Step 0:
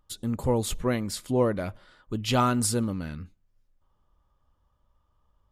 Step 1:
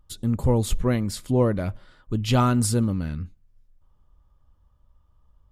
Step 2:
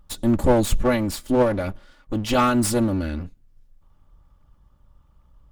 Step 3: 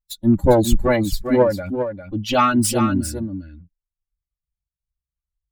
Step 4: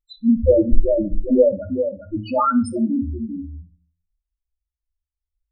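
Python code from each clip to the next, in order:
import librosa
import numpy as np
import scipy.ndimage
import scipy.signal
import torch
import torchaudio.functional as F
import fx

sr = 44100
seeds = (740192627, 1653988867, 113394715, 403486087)

y1 = fx.low_shelf(x, sr, hz=190.0, db=10.5)
y2 = fx.lower_of_two(y1, sr, delay_ms=3.5)
y2 = fx.rider(y2, sr, range_db=10, speed_s=2.0)
y2 = y2 * librosa.db_to_amplitude(4.0)
y3 = fx.bin_expand(y2, sr, power=2.0)
y3 = y3 + 10.0 ** (-8.0 / 20.0) * np.pad(y3, (int(401 * sr / 1000.0), 0))[:len(y3)]
y3 = y3 * librosa.db_to_amplitude(6.0)
y4 = fx.spec_topn(y3, sr, count=2)
y4 = fx.room_shoebox(y4, sr, seeds[0], volume_m3=150.0, walls='furnished', distance_m=0.54)
y4 = y4 * librosa.db_to_amplitude(3.0)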